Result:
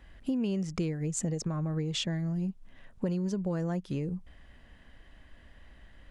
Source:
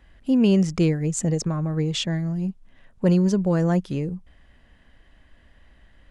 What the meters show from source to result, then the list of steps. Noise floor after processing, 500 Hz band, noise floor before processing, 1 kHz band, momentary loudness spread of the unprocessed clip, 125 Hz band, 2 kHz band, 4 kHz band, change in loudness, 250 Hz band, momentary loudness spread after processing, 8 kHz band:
−56 dBFS, −11.0 dB, −56 dBFS, −9.5 dB, 10 LU, −9.5 dB, −9.0 dB, −6.5 dB, −10.0 dB, −10.5 dB, 5 LU, −6.5 dB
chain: downward compressor 6 to 1, threshold −29 dBFS, peak gain reduction 14 dB

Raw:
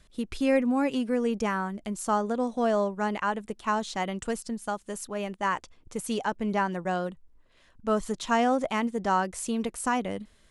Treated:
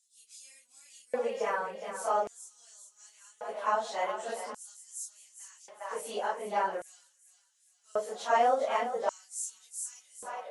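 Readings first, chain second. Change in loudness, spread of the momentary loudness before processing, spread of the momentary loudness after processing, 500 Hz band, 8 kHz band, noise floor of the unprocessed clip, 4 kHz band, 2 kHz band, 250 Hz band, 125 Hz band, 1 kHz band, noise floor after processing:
−4.5 dB, 9 LU, 21 LU, −4.5 dB, −1.0 dB, −60 dBFS, −6.5 dB, −6.5 dB, −23.0 dB, below −20 dB, −3.0 dB, −69 dBFS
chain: random phases in long frames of 100 ms
echo with a time of its own for lows and highs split 480 Hz, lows 89 ms, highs 408 ms, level −10 dB
auto-filter high-pass square 0.44 Hz 580–6,900 Hz
level −5.5 dB

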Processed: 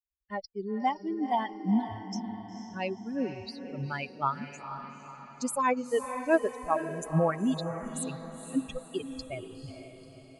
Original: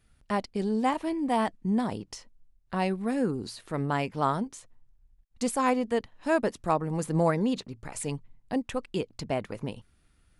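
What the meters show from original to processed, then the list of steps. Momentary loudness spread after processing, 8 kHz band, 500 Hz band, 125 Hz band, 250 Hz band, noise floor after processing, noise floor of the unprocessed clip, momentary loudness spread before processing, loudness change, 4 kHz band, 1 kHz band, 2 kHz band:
14 LU, −1.0 dB, −2.0 dB, −3.5 dB, −3.0 dB, −52 dBFS, −66 dBFS, 12 LU, −2.5 dB, −3.0 dB, −1.5 dB, −1.0 dB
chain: spectral dynamics exaggerated over time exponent 3
feedback delay with all-pass diffusion 484 ms, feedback 50%, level −9 dB
level +4 dB

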